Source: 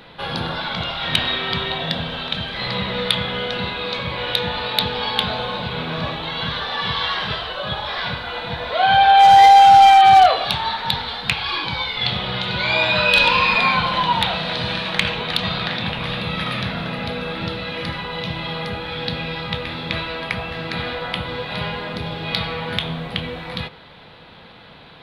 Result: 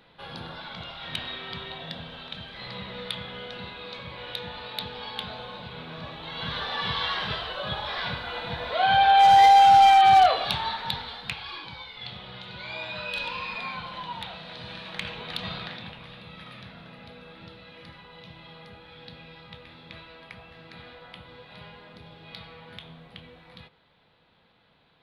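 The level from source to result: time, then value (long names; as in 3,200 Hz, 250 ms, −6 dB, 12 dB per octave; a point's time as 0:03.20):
0:06.09 −14 dB
0:06.59 −6 dB
0:10.59 −6 dB
0:11.85 −17.5 dB
0:14.48 −17.5 dB
0:15.52 −11 dB
0:16.09 −20 dB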